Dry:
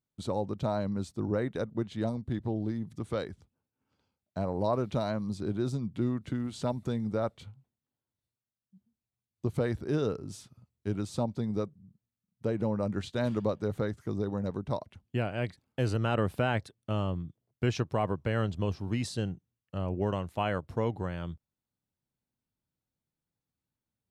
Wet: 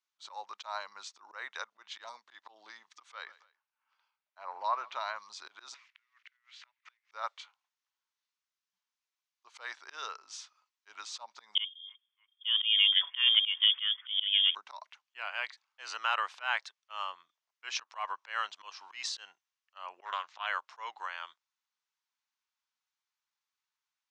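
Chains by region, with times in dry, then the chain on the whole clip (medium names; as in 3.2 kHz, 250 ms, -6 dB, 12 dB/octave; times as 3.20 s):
3.12–5.16 s: tone controls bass +1 dB, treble -11 dB + feedback delay 139 ms, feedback 35%, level -23 dB
5.74–7.12 s: block-companded coder 5-bit + band-pass filter 2.1 kHz, Q 2.8 + inverted gate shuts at -45 dBFS, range -28 dB
11.55–14.55 s: feedback echo behind a high-pass 307 ms, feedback 57%, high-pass 2.3 kHz, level -17.5 dB + frequency inversion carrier 3.4 kHz
20.05–20.47 s: low-pass 6.6 kHz 24 dB/octave + loudspeaker Doppler distortion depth 0.21 ms
whole clip: slow attack 135 ms; elliptic band-pass 1–6.4 kHz, stop band 80 dB; trim +6.5 dB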